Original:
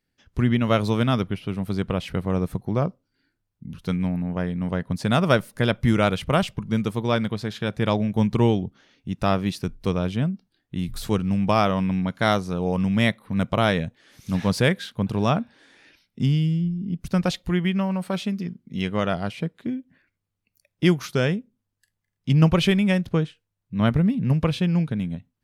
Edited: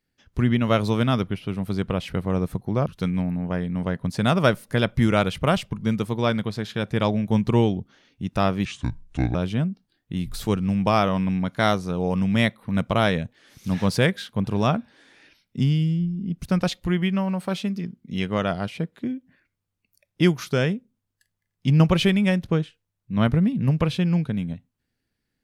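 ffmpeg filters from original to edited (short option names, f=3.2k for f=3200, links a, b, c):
-filter_complex "[0:a]asplit=4[a][b][c][d];[a]atrim=end=2.862[e];[b]atrim=start=3.718:end=9.514[f];[c]atrim=start=9.51:end=9.97,asetpts=PTS-STARTPTS,asetrate=29106,aresample=44100,atrim=end_sample=30736,asetpts=PTS-STARTPTS[g];[d]atrim=start=9.966[h];[e][f]acrossfade=d=0.004:c1=hsin:c2=hsin[i];[i][g]acrossfade=d=0.004:c1=hsin:c2=hsin[j];[j][h]acrossfade=d=0.004:c1=hsin:c2=hsin"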